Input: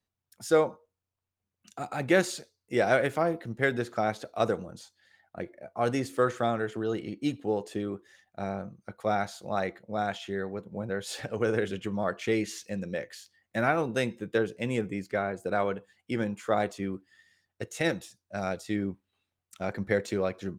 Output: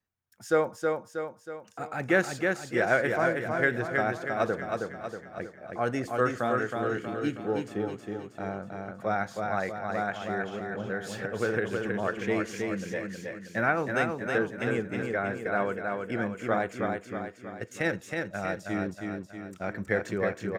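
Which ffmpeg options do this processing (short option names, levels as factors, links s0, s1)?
-filter_complex "[0:a]equalizer=f=1600:t=o:w=0.67:g=6,equalizer=f=4000:t=o:w=0.67:g=-6,equalizer=f=10000:t=o:w=0.67:g=-6,asplit=2[s0][s1];[s1]aecho=0:1:319|638|957|1276|1595|1914|2233:0.631|0.322|0.164|0.0837|0.0427|0.0218|0.0111[s2];[s0][s2]amix=inputs=2:normalize=0,volume=0.794"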